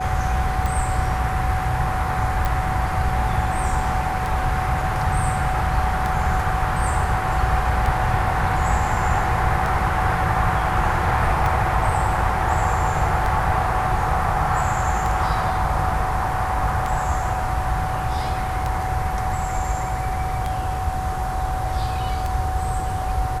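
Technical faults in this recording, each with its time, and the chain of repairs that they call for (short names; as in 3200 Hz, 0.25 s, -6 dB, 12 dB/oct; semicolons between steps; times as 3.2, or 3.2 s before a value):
tick 33 1/3 rpm
tone 750 Hz -26 dBFS
2.45 pop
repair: de-click; notch 750 Hz, Q 30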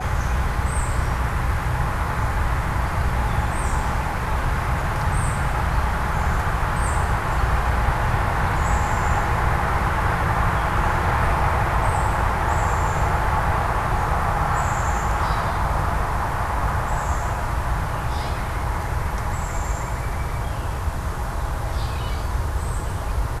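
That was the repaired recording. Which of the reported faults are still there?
none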